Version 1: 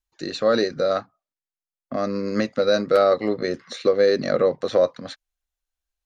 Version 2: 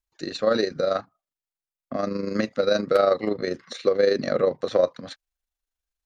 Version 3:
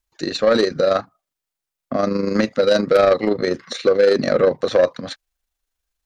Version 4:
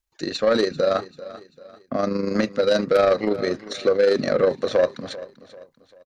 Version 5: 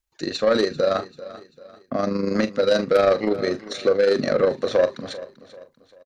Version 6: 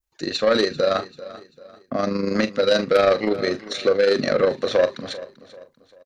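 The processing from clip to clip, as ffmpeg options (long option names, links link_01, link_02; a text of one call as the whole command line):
ffmpeg -i in.wav -af "tremolo=f=25:d=0.519" out.wav
ffmpeg -i in.wav -af "asoftclip=type=tanh:threshold=-15dB,volume=8dB" out.wav
ffmpeg -i in.wav -af "aecho=1:1:391|782|1173:0.141|0.0565|0.0226,volume=-3.5dB" out.wav
ffmpeg -i in.wav -filter_complex "[0:a]asplit=2[link_01][link_02];[link_02]adelay=41,volume=-13.5dB[link_03];[link_01][link_03]amix=inputs=2:normalize=0" out.wav
ffmpeg -i in.wav -af "adynamicequalizer=threshold=0.0141:dfrequency=3000:dqfactor=0.71:tfrequency=3000:tqfactor=0.71:attack=5:release=100:ratio=0.375:range=2.5:mode=boostabove:tftype=bell" out.wav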